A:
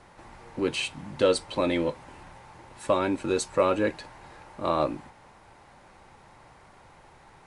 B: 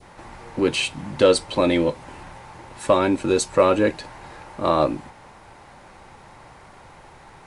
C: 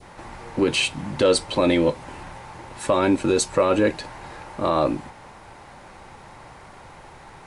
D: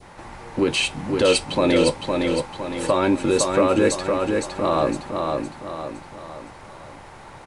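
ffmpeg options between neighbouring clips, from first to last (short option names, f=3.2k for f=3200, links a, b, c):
-af "adynamicequalizer=threshold=0.0112:dfrequency=1400:dqfactor=0.73:tfrequency=1400:tqfactor=0.73:attack=5:release=100:ratio=0.375:range=2.5:mode=cutabove:tftype=bell,acontrast=87"
-af "alimiter=limit=-12dB:level=0:latency=1:release=31,volume=2dB"
-af "aecho=1:1:511|1022|1533|2044|2555|3066:0.631|0.284|0.128|0.0575|0.0259|0.0116"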